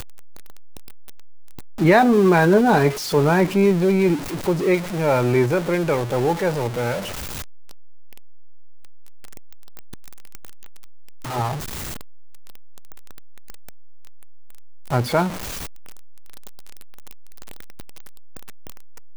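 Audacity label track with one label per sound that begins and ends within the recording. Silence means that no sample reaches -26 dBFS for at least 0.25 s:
1.800000	7.000000	sound
11.300000	11.570000	sound
14.920000	15.290000	sound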